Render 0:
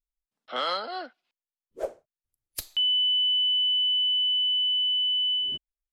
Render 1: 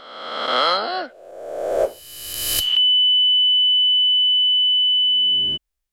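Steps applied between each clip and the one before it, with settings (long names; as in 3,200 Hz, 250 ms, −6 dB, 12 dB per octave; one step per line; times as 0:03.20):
peak hold with a rise ahead of every peak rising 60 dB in 1.38 s
level +8 dB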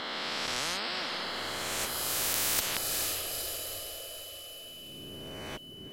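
feedback delay with all-pass diffusion 472 ms, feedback 47%, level −15 dB
every bin compressed towards the loudest bin 10 to 1
level −5.5 dB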